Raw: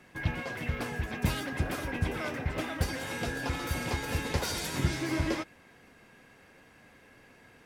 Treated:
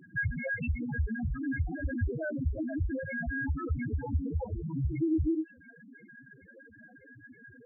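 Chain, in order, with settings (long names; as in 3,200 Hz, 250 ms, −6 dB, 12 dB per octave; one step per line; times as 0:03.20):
0:04.01–0:04.78: low-pass filter 1,300 Hz 12 dB per octave
in parallel at +1 dB: downward compressor 12 to 1, threshold −42 dBFS, peak gain reduction 21 dB
on the sum: brickwall limiter −23.5 dBFS, peak gain reduction 10 dB
spectral peaks only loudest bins 2
level +8 dB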